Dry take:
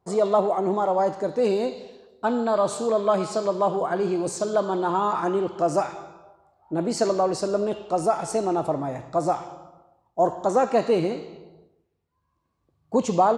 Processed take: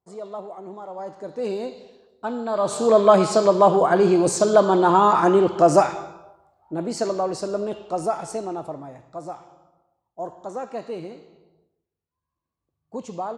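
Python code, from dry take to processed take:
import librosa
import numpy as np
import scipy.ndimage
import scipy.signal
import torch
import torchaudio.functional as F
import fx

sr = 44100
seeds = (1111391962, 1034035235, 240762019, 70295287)

y = fx.gain(x, sr, db=fx.line((0.86, -14.0), (1.5, -4.5), (2.44, -4.5), (2.95, 7.5), (5.83, 7.5), (6.74, -2.0), (8.14, -2.0), (9.01, -11.0)))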